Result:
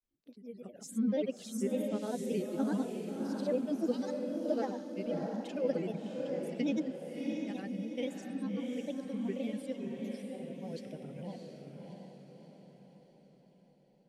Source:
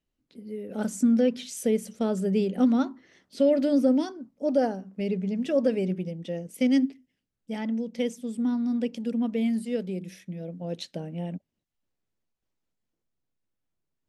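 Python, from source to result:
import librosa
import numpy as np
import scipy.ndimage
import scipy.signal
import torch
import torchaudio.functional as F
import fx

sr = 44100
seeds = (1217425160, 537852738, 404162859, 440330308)

p1 = fx.granulator(x, sr, seeds[0], grain_ms=100.0, per_s=20.0, spray_ms=100.0, spread_st=3)
p2 = fx.dereverb_blind(p1, sr, rt60_s=1.8)
p3 = p2 + fx.echo_diffused(p2, sr, ms=655, feedback_pct=50, wet_db=-3.5, dry=0)
y = F.gain(torch.from_numpy(p3), -8.0).numpy()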